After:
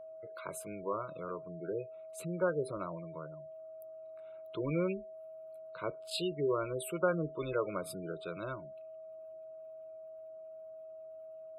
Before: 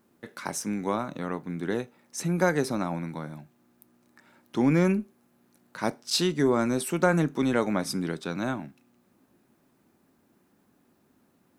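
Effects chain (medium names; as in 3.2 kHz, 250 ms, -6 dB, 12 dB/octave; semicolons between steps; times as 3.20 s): static phaser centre 1.2 kHz, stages 8; spectral gate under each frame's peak -20 dB strong; whistle 640 Hz -41 dBFS; trim -5 dB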